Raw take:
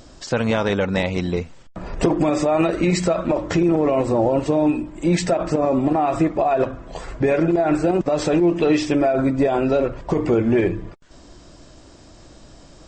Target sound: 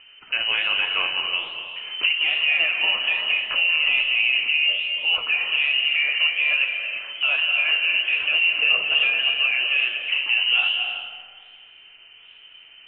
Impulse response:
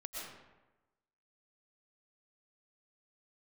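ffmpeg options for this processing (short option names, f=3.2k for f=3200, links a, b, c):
-filter_complex "[0:a]lowpass=f=2.6k:t=q:w=0.5098,lowpass=f=2.6k:t=q:w=0.6013,lowpass=f=2.6k:t=q:w=0.9,lowpass=f=2.6k:t=q:w=2.563,afreqshift=-3100,flanger=delay=9.6:depth=9.5:regen=68:speed=1.2:shape=sinusoidal,asplit=2[a][b];[1:a]atrim=start_sample=2205,asetrate=24255,aresample=44100,lowshelf=f=310:g=7[c];[b][c]afir=irnorm=-1:irlink=0,volume=-3dB[d];[a][d]amix=inputs=2:normalize=0,volume=-3dB"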